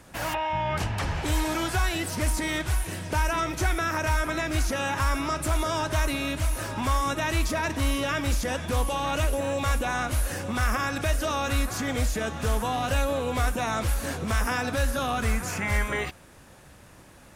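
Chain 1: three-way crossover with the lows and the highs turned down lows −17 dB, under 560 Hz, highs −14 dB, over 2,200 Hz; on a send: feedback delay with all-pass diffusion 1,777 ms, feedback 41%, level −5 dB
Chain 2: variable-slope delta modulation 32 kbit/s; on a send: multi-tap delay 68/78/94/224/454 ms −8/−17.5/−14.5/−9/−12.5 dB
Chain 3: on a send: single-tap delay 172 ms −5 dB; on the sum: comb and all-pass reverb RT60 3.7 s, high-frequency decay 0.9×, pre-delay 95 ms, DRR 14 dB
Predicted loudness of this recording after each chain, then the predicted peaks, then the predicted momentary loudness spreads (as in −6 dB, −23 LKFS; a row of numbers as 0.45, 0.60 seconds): −31.5, −26.5, −26.0 LKFS; −18.0, −13.0, −13.0 dBFS; 6, 3, 3 LU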